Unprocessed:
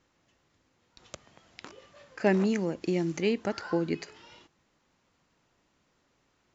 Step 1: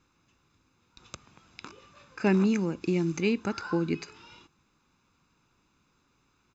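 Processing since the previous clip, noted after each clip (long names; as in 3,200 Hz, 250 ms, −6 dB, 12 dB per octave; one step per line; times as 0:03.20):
comb filter 0.8 ms, depth 60%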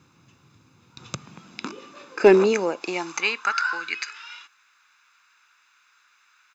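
high-pass filter sweep 120 Hz → 1,600 Hz, 0:01.03–0:03.68
in parallel at −8 dB: hard clipping −21 dBFS, distortion −10 dB
on the sum: level +6.5 dB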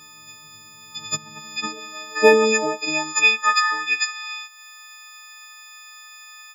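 every partial snapped to a pitch grid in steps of 6 semitones
one half of a high-frequency compander encoder only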